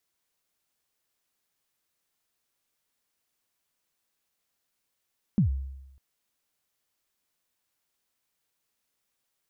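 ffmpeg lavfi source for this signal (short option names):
-f lavfi -i "aevalsrc='0.15*pow(10,-3*t/0.95)*sin(2*PI*(230*0.111/log(67/230)*(exp(log(67/230)*min(t,0.111)/0.111)-1)+67*max(t-0.111,0)))':d=0.6:s=44100"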